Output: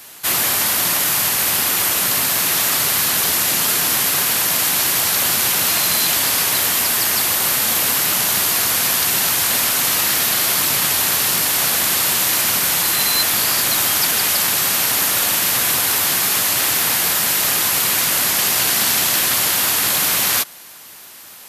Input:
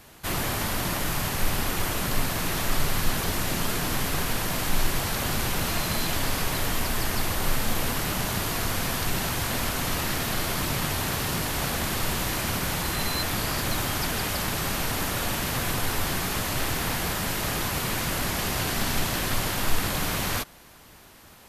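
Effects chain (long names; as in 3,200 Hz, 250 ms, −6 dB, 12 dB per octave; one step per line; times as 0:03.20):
high-pass filter 93 Hz 12 dB per octave
spectral tilt +3 dB per octave
level +6 dB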